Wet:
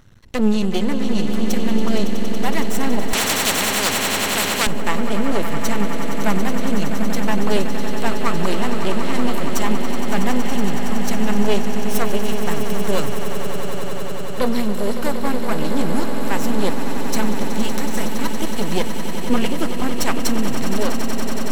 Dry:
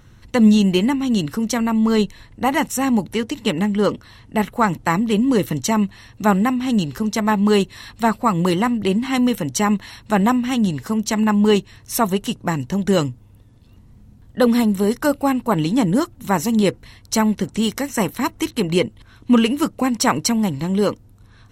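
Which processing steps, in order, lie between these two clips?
half-wave rectifier; swelling echo 93 ms, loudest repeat 8, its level -11.5 dB; 3.13–4.67 spectral compressor 4:1

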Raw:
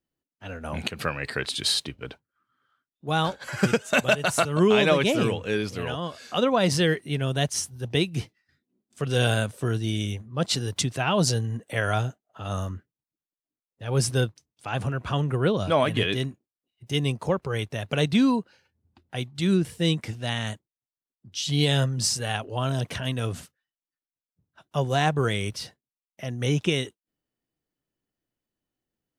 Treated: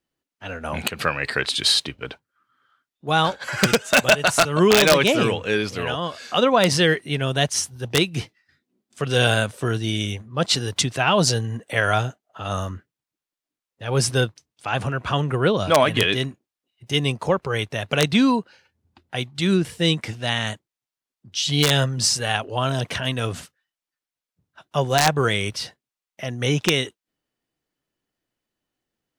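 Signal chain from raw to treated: wrapped overs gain 9.5 dB; overdrive pedal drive 2 dB, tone 6200 Hz, clips at -9.5 dBFS; gain +7 dB

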